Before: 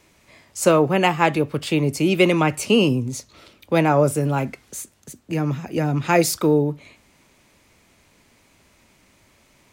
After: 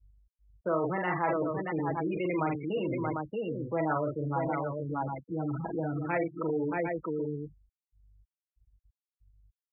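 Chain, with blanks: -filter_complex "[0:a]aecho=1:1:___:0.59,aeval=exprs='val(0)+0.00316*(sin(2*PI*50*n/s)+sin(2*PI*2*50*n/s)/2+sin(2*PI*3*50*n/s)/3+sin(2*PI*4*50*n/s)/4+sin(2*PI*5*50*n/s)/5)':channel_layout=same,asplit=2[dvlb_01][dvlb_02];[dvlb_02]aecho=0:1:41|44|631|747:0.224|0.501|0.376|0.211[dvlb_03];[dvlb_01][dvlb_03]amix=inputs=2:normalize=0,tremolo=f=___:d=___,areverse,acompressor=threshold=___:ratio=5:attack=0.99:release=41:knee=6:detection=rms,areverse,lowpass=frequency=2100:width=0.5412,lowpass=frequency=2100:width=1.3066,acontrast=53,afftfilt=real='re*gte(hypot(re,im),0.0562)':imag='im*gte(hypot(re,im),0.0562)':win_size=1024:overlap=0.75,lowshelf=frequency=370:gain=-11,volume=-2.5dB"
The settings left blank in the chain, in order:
6.2, 1.6, 0.43, -25dB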